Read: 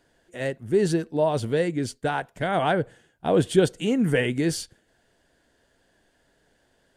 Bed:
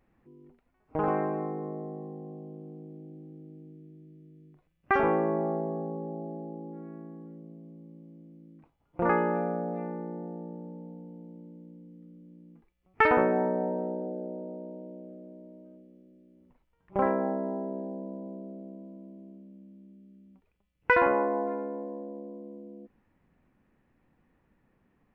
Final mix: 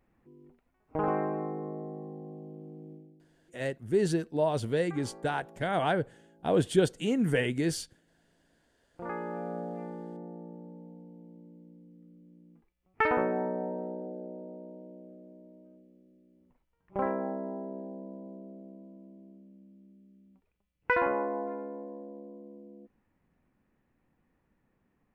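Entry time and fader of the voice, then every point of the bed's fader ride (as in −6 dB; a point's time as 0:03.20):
3.20 s, −5.0 dB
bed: 0:02.93 −1.5 dB
0:03.37 −23 dB
0:08.45 −23 dB
0:09.58 −4.5 dB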